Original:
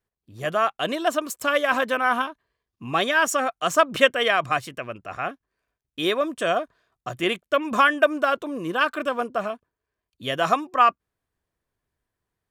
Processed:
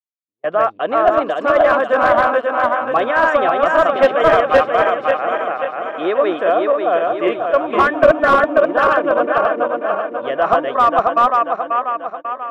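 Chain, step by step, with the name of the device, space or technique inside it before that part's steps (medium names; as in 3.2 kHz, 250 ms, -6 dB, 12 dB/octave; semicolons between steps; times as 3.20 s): backward echo that repeats 269 ms, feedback 71%, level -0.5 dB; walkie-talkie (band-pass 490–2400 Hz; hard clipper -12.5 dBFS, distortion -15 dB; gate -35 dBFS, range -46 dB); tilt shelf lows +8.5 dB, about 1.4 kHz; trim +3.5 dB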